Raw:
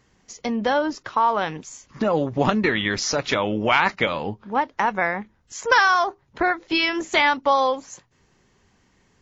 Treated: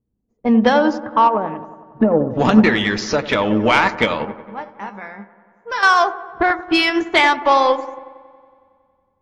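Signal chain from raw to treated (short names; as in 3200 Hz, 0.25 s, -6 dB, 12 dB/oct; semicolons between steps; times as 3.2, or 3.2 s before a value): low-pass opened by the level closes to 320 Hz, open at -17.5 dBFS; spectral noise reduction 9 dB; 1.27–2.31 treble ducked by the level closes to 620 Hz, closed at -18 dBFS; in parallel at -2.5 dB: limiter -16 dBFS, peak gain reduction 11 dB; 4.25–5.83 on the sum: resonator 200 Hz, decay 0.3 s, harmonics all, mix 80%; soft clip -7 dBFS, distortion -22 dB; dark delay 92 ms, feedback 75%, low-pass 1400 Hz, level -11 dB; on a send at -15 dB: reverb RT60 0.15 s, pre-delay 3 ms; on the sum: upward expander 1.5:1, over -36 dBFS; gain +5.5 dB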